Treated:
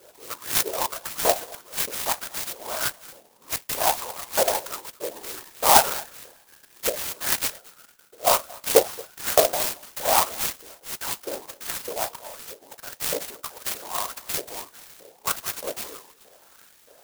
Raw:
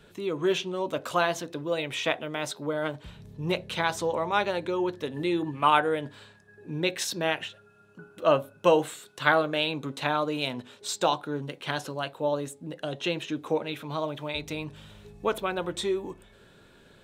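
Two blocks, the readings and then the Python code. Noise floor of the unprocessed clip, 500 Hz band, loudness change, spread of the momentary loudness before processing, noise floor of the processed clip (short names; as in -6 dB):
-57 dBFS, -0.5 dB, +4.0 dB, 12 LU, -56 dBFS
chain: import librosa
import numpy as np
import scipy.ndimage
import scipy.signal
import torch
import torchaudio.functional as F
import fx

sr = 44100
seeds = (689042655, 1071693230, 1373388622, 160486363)

p1 = fx.transient(x, sr, attack_db=-8, sustain_db=1)
p2 = fx.whisperise(p1, sr, seeds[0])
p3 = fx.filter_lfo_highpass(p2, sr, shape='saw_up', hz=1.6, low_hz=480.0, high_hz=3200.0, q=3.2)
p4 = p3 + fx.echo_single(p3, sr, ms=227, db=-23.0, dry=0)
p5 = fx.clock_jitter(p4, sr, seeds[1], jitter_ms=0.14)
y = p5 * librosa.db_to_amplitude(2.5)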